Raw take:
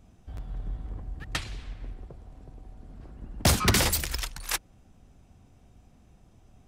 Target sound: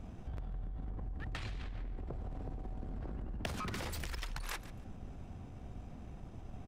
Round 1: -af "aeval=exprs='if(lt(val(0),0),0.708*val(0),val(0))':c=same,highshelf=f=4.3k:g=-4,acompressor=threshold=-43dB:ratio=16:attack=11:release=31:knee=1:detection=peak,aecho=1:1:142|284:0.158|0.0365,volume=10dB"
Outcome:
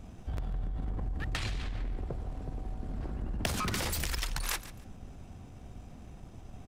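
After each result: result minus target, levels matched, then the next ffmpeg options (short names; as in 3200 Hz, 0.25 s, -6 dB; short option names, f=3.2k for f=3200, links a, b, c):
compressor: peak gain reduction -7 dB; 8000 Hz band +4.5 dB
-af "aeval=exprs='if(lt(val(0),0),0.708*val(0),val(0))':c=same,highshelf=f=4.3k:g=-4,acompressor=threshold=-50.5dB:ratio=16:attack=11:release=31:knee=1:detection=peak,aecho=1:1:142|284:0.158|0.0365,volume=10dB"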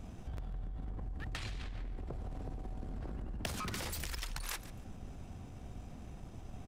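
8000 Hz band +5.0 dB
-af "aeval=exprs='if(lt(val(0),0),0.708*val(0),val(0))':c=same,highshelf=f=4.3k:g=-14,acompressor=threshold=-50.5dB:ratio=16:attack=11:release=31:knee=1:detection=peak,aecho=1:1:142|284:0.158|0.0365,volume=10dB"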